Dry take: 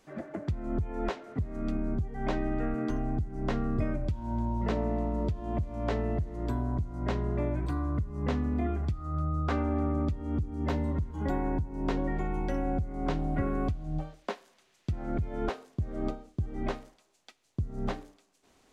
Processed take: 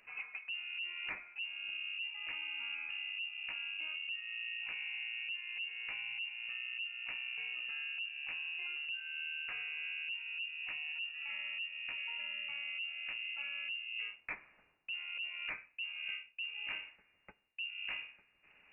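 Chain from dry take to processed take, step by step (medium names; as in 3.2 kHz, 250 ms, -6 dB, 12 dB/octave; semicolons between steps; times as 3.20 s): frequency inversion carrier 2.8 kHz; reverse; compression 10:1, threshold -39 dBFS, peak gain reduction 16.5 dB; reverse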